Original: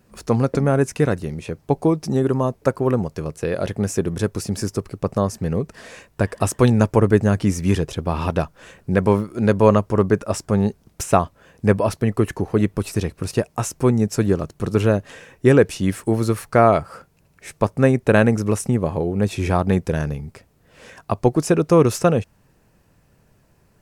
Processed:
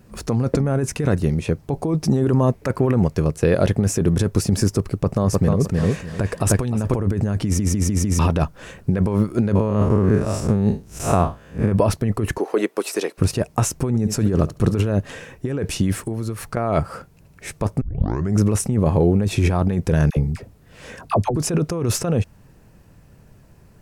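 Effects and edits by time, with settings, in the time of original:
2.47–3.16 s: peaking EQ 2.1 kHz +6 dB 0.85 oct
4.82–6.94 s: feedback delay 305 ms, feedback 23%, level -5.5 dB
7.44 s: stutter in place 0.15 s, 5 plays
9.55–11.72 s: spectral blur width 130 ms
12.38–13.18 s: high-pass 360 Hz 24 dB/octave
13.87–14.90 s: flutter echo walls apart 11.9 m, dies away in 0.23 s
15.99–16.57 s: compression 8:1, threshold -30 dBFS
17.81 s: tape start 0.56 s
20.10–21.36 s: phase dispersion lows, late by 66 ms, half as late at 720 Hz
whole clip: bass shelf 270 Hz +6.5 dB; compressor with a negative ratio -18 dBFS, ratio -1

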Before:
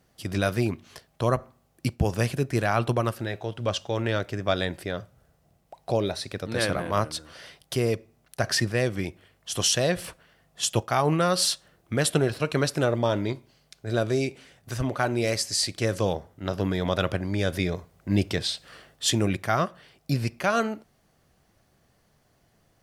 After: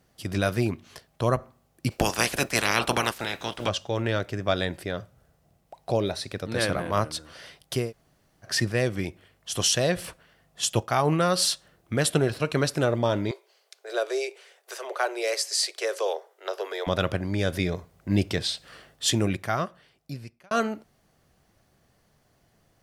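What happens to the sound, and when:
1.90–3.67 s: spectral peaks clipped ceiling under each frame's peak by 25 dB
7.85–8.50 s: room tone, crossfade 0.16 s
13.31–16.87 s: steep high-pass 380 Hz 72 dB/octave
19.18–20.51 s: fade out

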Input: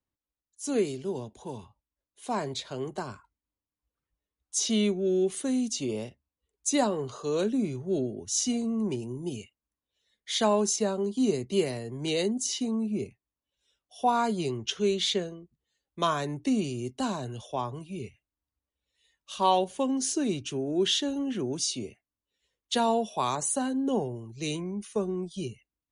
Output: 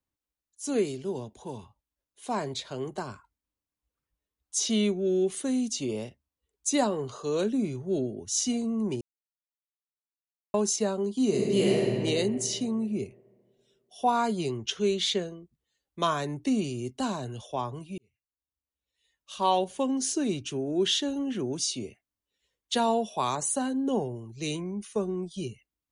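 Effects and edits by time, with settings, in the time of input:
9.01–10.54 s: mute
11.27–11.95 s: reverb throw, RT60 2.4 s, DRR -3 dB
17.98–19.72 s: fade in linear

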